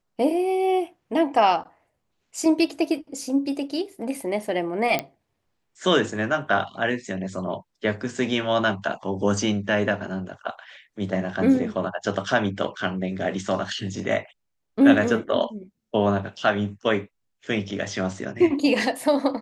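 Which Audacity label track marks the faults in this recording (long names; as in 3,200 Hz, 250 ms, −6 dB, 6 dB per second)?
4.990000	4.990000	click −9 dBFS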